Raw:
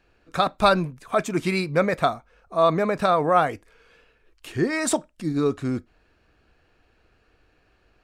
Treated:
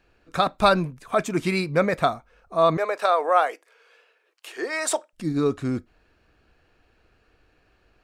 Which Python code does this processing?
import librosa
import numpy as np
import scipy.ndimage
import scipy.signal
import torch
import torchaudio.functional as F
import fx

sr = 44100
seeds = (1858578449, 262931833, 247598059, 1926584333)

y = fx.highpass(x, sr, hz=440.0, slope=24, at=(2.77, 5.13))